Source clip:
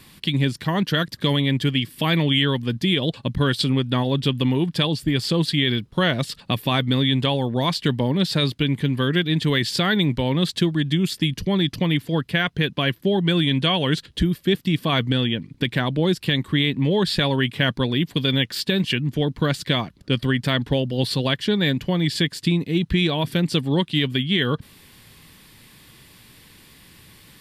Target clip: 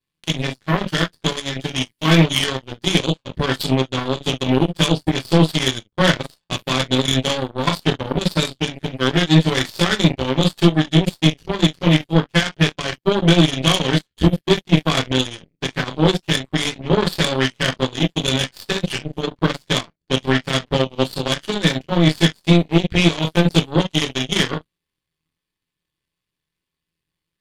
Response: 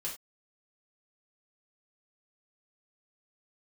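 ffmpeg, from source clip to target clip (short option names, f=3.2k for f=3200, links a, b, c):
-filter_complex "[0:a]highshelf=f=10k:g=-7.5[a];[1:a]atrim=start_sample=2205,atrim=end_sample=3528[b];[a][b]afir=irnorm=-1:irlink=0,aeval=exprs='0.562*(cos(1*acos(clip(val(0)/0.562,-1,1)))-cos(1*PI/2))+0.0355*(cos(4*acos(clip(val(0)/0.562,-1,1)))-cos(4*PI/2))+0.0794*(cos(7*acos(clip(val(0)/0.562,-1,1)))-cos(7*PI/2))':c=same,volume=4dB"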